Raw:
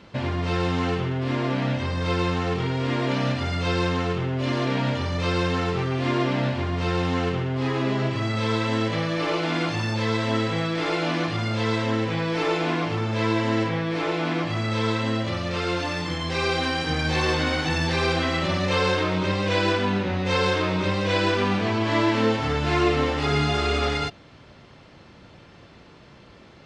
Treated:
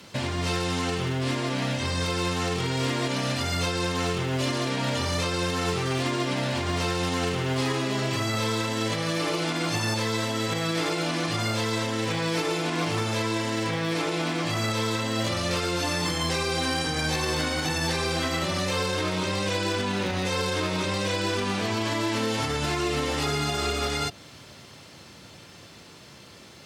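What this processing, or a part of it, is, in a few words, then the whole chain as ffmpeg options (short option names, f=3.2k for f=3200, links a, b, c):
FM broadcast chain: -filter_complex "[0:a]highpass=f=69:w=0.5412,highpass=f=69:w=1.3066,dynaudnorm=f=300:g=31:m=11.5dB,acrossover=split=330|1700[a][b][c];[a]acompressor=threshold=-24dB:ratio=4[d];[b]acompressor=threshold=-24dB:ratio=4[e];[c]acompressor=threshold=-34dB:ratio=4[f];[d][e][f]amix=inputs=3:normalize=0,aemphasis=mode=production:type=50fm,alimiter=limit=-18dB:level=0:latency=1:release=190,asoftclip=type=hard:threshold=-19.5dB,lowpass=f=15k:w=0.5412,lowpass=f=15k:w=1.3066,aemphasis=mode=production:type=50fm"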